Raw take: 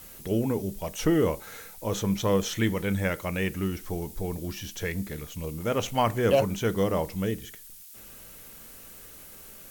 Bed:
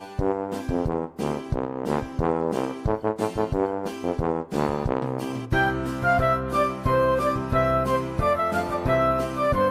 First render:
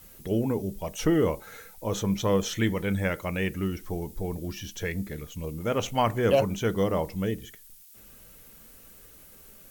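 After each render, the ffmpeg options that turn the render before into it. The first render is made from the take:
-af "afftdn=nr=6:nf=-47"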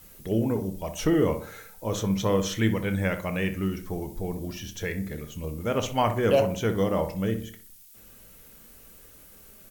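-filter_complex "[0:a]asplit=2[a][b];[b]adelay=27,volume=-13.5dB[c];[a][c]amix=inputs=2:normalize=0,asplit=2[d][e];[e]adelay=62,lowpass=f=1.7k:p=1,volume=-9dB,asplit=2[f][g];[g]adelay=62,lowpass=f=1.7k:p=1,volume=0.44,asplit=2[h][i];[i]adelay=62,lowpass=f=1.7k:p=1,volume=0.44,asplit=2[j][k];[k]adelay=62,lowpass=f=1.7k:p=1,volume=0.44,asplit=2[l][m];[m]adelay=62,lowpass=f=1.7k:p=1,volume=0.44[n];[d][f][h][j][l][n]amix=inputs=6:normalize=0"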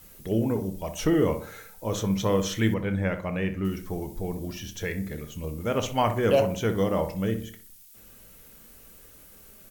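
-filter_complex "[0:a]asettb=1/sr,asplit=3[a][b][c];[a]atrim=end=2.744[d];[b]atrim=start=2.74:end=3.65,asetpts=PTS-STARTPTS,afade=t=in:d=0.004:c=qsin,afade=t=out:st=0.906:d=0.004:c=qsin,lowpass=f=2k:p=1[e];[c]atrim=start=3.646[f];[d][e]acrossfade=d=0.004:c1=hsin:c2=qsin[g];[g][f]acrossfade=d=0.004:c1=qsin:c2=hsin"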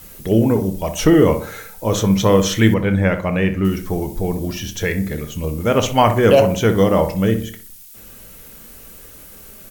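-af "volume=10.5dB,alimiter=limit=-2dB:level=0:latency=1"

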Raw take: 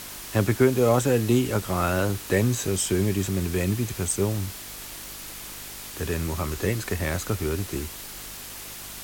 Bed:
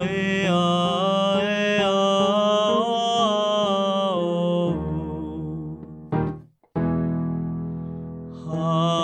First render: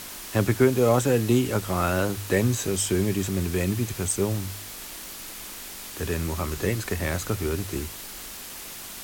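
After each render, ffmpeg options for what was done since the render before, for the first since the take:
-af "bandreject=f=50:t=h:w=4,bandreject=f=100:t=h:w=4,bandreject=f=150:t=h:w=4"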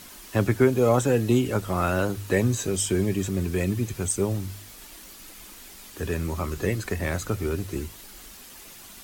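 -af "afftdn=nr=8:nf=-39"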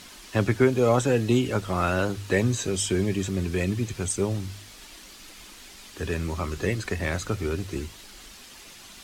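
-af "lowpass=4k,aemphasis=mode=production:type=75fm"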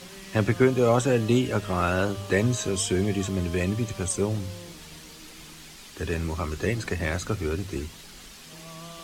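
-filter_complex "[1:a]volume=-22.5dB[a];[0:a][a]amix=inputs=2:normalize=0"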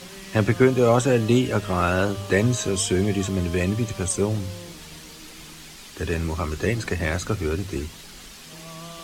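-af "volume=3dB"

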